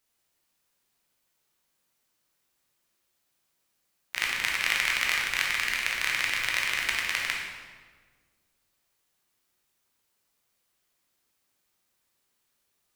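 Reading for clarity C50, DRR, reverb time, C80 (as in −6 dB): 1.0 dB, −2.5 dB, 1.5 s, 3.5 dB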